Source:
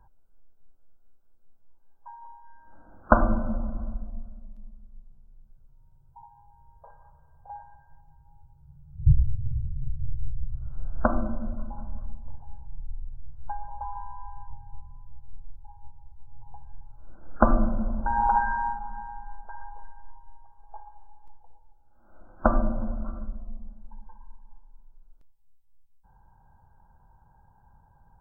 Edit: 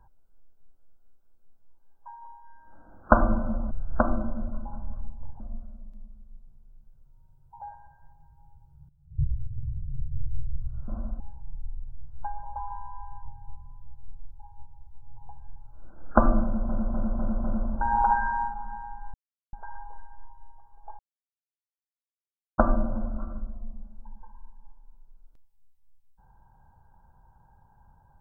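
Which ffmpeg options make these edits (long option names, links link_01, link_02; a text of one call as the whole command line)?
ffmpeg -i in.wav -filter_complex "[0:a]asplit=14[link_01][link_02][link_03][link_04][link_05][link_06][link_07][link_08][link_09][link_10][link_11][link_12][link_13][link_14];[link_01]atrim=end=3.712[link_15];[link_02]atrim=start=10.758:end=12.452[link_16];[link_03]atrim=start=4.028:end=6.242[link_17];[link_04]atrim=start=7.488:end=8.77,asetpts=PTS-STARTPTS,afade=type=out:start_time=1.278:duration=0.004:curve=hsin:silence=0.16788[link_18];[link_05]atrim=start=8.77:end=10.762,asetpts=PTS-STARTPTS,afade=type=in:duration=1.3:silence=0.16788[link_19];[link_06]atrim=start=3.708:end=4.032[link_20];[link_07]atrim=start=12.448:end=17.942[link_21];[link_08]atrim=start=17.688:end=17.942[link_22];[link_09]atrim=start=17.688:end=17.942[link_23];[link_10]atrim=start=17.688:end=17.942[link_24];[link_11]atrim=start=17.688:end=19.39,asetpts=PTS-STARTPTS,afade=type=out:start_time=1.698:duration=0.004:curve=hsin,apad=pad_dur=0.39[link_25];[link_12]atrim=start=19.39:end=20.85,asetpts=PTS-STARTPTS,afade=type=in:duration=0.004:curve=hsin,afade=type=out:start_time=1.456:duration=0.004:curve=hsin[link_26];[link_13]atrim=start=20.85:end=22.44,asetpts=PTS-STARTPTS,volume=0[link_27];[link_14]atrim=start=22.44,asetpts=PTS-STARTPTS,afade=type=in:duration=0.004:curve=hsin[link_28];[link_15][link_16]acrossfade=duration=0.004:curve1=hsin:curve2=hsin[link_29];[link_29][link_17]acrossfade=duration=0.004:curve1=hsin:curve2=hsin[link_30];[link_18][link_19]concat=n=2:v=0:a=1[link_31];[link_30][link_31]acrossfade=duration=0.004:curve1=hsin:curve2=hsin[link_32];[link_32][link_20]acrossfade=duration=0.004:curve1=hsin:curve2=hsin[link_33];[link_33][link_21]acrossfade=duration=0.004:curve1=hsin:curve2=hsin[link_34];[link_34][link_22]acrossfade=duration=0.004:curve1=hsin:curve2=hsin[link_35];[link_35][link_23]acrossfade=duration=0.004:curve1=hsin:curve2=hsin[link_36];[link_36][link_24]acrossfade=duration=0.004:curve1=hsin:curve2=hsin[link_37];[link_25][link_26][link_27][link_28]concat=n=4:v=0:a=1[link_38];[link_37][link_38]acrossfade=duration=0.004:curve1=hsin:curve2=hsin" out.wav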